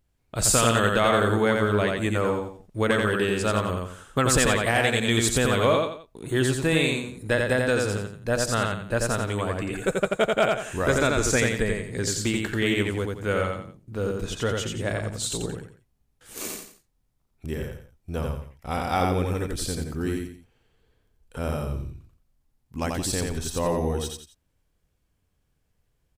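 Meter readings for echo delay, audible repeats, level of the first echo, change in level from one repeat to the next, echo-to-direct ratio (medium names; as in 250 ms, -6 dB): 87 ms, 3, -3.0 dB, -9.5 dB, -2.5 dB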